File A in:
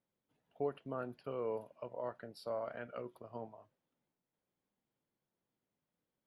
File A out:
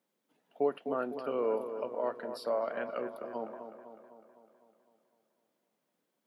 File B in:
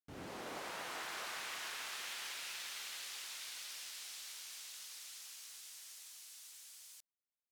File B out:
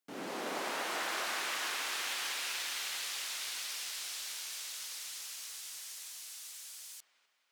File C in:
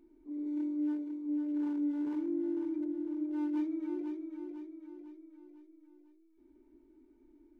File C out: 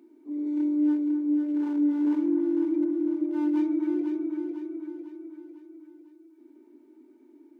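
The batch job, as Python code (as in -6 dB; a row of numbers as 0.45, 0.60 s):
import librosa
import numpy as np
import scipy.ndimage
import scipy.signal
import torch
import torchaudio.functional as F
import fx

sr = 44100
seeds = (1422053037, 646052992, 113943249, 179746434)

y = scipy.signal.sosfilt(scipy.signal.butter(4, 200.0, 'highpass', fs=sr, output='sos'), x)
y = fx.echo_wet_lowpass(y, sr, ms=253, feedback_pct=57, hz=1900.0, wet_db=-9)
y = F.gain(torch.from_numpy(y), 7.5).numpy()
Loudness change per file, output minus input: +8.0, +7.5, +9.0 LU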